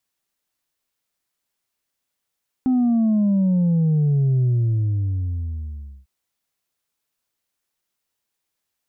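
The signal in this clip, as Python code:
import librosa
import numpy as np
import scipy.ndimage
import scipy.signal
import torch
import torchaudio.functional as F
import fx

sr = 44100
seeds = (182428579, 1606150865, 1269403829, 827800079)

y = fx.sub_drop(sr, level_db=-15.5, start_hz=260.0, length_s=3.4, drive_db=2.0, fade_s=1.63, end_hz=65.0)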